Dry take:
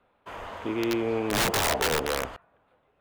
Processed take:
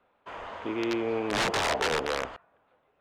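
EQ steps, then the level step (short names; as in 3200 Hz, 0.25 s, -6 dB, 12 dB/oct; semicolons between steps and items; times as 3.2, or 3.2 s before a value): air absorption 79 m; low shelf 200 Hz -8 dB; 0.0 dB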